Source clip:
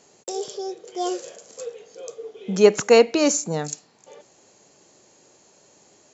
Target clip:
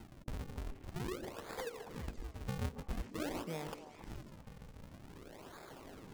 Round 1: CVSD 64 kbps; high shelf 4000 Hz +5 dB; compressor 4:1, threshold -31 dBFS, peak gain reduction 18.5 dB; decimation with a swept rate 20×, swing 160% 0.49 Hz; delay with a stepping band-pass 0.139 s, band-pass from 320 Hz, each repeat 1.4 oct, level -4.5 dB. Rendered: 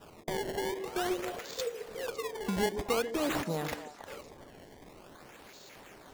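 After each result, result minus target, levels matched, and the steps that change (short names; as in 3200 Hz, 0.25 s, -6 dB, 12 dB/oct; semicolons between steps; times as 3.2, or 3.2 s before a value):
decimation with a swept rate: distortion -16 dB; compressor: peak gain reduction -8 dB
change: decimation with a swept rate 75×, swing 160% 0.49 Hz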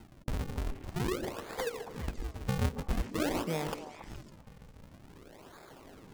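compressor: peak gain reduction -8 dB
change: compressor 4:1, threshold -42 dBFS, peak gain reduction 27 dB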